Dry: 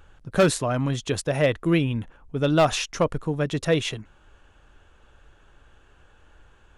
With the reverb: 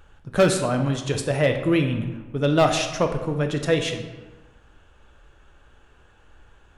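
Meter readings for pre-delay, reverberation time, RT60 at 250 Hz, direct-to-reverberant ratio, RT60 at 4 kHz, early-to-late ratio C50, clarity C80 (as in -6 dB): 11 ms, 1.2 s, 1.3 s, 5.0 dB, 0.75 s, 7.5 dB, 9.5 dB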